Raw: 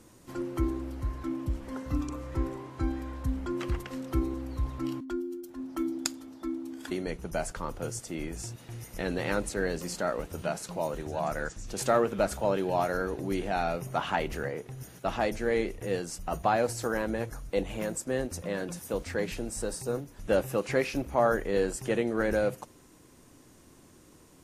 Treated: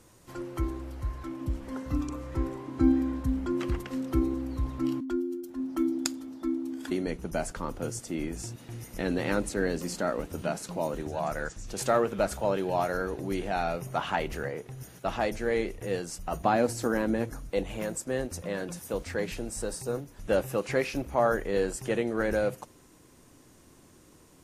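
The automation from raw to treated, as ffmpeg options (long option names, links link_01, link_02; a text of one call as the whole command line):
ffmpeg -i in.wav -af "asetnsamples=nb_out_samples=441:pad=0,asendcmd='1.41 equalizer g 1.5;2.68 equalizer g 13.5;3.2 equalizer g 5.5;11.08 equalizer g -1;16.4 equalizer g 8;17.47 equalizer g -1',equalizer=frequency=260:width_type=o:width=0.87:gain=-6.5" out.wav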